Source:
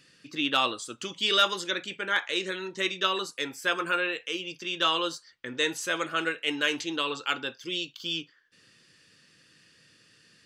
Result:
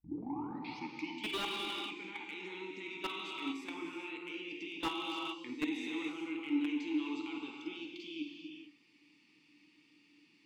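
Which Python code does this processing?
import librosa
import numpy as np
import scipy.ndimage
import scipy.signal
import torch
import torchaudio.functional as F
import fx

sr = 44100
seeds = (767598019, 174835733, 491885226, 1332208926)

p1 = fx.tape_start_head(x, sr, length_s=1.24)
p2 = fx.high_shelf(p1, sr, hz=2100.0, db=7.5)
p3 = fx.hum_notches(p2, sr, base_hz=50, count=2)
p4 = fx.level_steps(p3, sr, step_db=20)
p5 = fx.vowel_filter(p4, sr, vowel='u')
p6 = p5 + fx.room_flutter(p5, sr, wall_m=8.8, rt60_s=0.23, dry=0)
p7 = fx.rev_gated(p6, sr, seeds[0], gate_ms=480, shape='flat', drr_db=1.0)
p8 = fx.slew_limit(p7, sr, full_power_hz=14.0)
y = p8 * 10.0 ** (9.5 / 20.0)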